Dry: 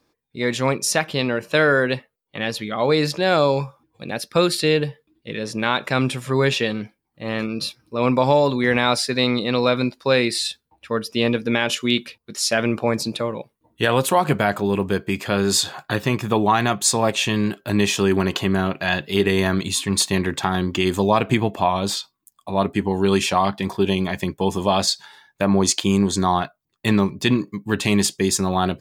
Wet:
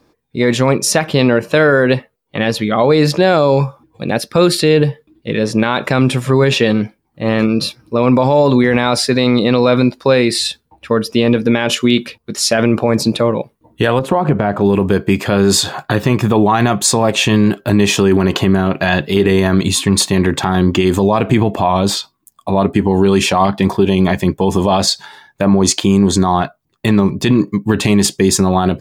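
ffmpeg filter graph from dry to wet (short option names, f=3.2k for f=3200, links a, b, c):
-filter_complex "[0:a]asettb=1/sr,asplit=3[a][b][c];[a]atrim=end=13.994[d];[b]atrim=start=13.99:end=14.61,asetpts=PTS-STARTPTS,afade=t=in:d=0.004:c=qsin,afade=t=out:st=0.616:d=0.004:c=qsin,lowpass=f=1.1k:p=1,acompressor=threshold=-21dB:ratio=4:attack=3.2:release=140:knee=1:detection=peak[e];[c]atrim=start=14.606[f];[d][e]acrossfade=d=0.004:c1=hsin:c2=qsin[g];[g][f]acrossfade=d=0.004:c1=qsin:c2=hsin,tiltshelf=f=1.3k:g=3.5,alimiter=level_in=10.5dB:limit=-1dB:release=50:level=0:latency=1,volume=-1dB"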